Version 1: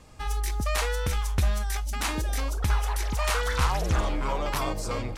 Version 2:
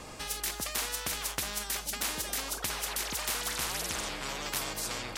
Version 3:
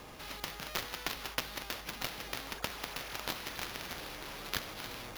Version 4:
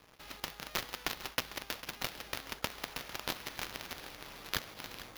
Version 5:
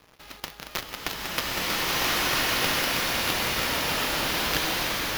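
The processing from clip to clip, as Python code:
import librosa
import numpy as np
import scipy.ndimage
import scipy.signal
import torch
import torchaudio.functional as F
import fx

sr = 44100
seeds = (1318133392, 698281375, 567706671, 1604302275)

y1 = fx.spectral_comp(x, sr, ratio=4.0)
y2 = fx.sample_hold(y1, sr, seeds[0], rate_hz=8100.0, jitter_pct=0)
y2 = fx.cheby_harmonics(y2, sr, harmonics=(7,), levels_db=(-13,), full_scale_db=-15.0)
y2 = F.gain(torch.from_numpy(y2), 1.0).numpy()
y3 = np.sign(y2) * np.maximum(np.abs(y2) - 10.0 ** (-47.5 / 20.0), 0.0)
y3 = y3 + 10.0 ** (-15.0 / 20.0) * np.pad(y3, (int(450 * sr / 1000.0), 0))[:len(y3)]
y3 = F.gain(torch.from_numpy(y3), 1.5).numpy()
y4 = fx.rev_bloom(y3, sr, seeds[1], attack_ms=1390, drr_db=-11.0)
y4 = F.gain(torch.from_numpy(y4), 4.0).numpy()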